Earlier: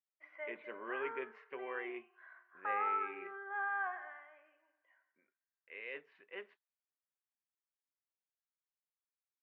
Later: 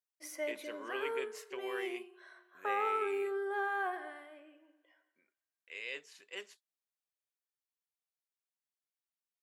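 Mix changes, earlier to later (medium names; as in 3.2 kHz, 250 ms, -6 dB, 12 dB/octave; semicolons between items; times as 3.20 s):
background: remove Butterworth band-pass 1.7 kHz, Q 0.66; master: remove low-pass 2.2 kHz 24 dB/octave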